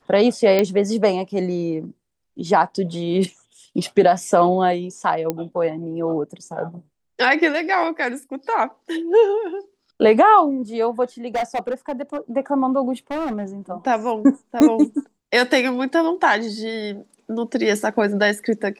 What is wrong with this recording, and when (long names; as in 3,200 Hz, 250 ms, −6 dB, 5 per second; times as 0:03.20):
0:00.59: click −6 dBFS
0:05.30: click −9 dBFS
0:11.35–0:12.18: clipping −18.5 dBFS
0:13.11–0:13.44: clipping −21.5 dBFS
0:14.60: click −5 dBFS